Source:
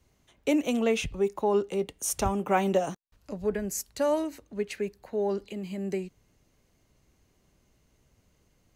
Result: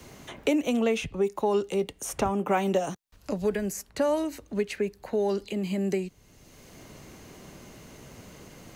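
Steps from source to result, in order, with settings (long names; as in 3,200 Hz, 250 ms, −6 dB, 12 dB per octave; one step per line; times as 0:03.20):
multiband upward and downward compressor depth 70%
level +1.5 dB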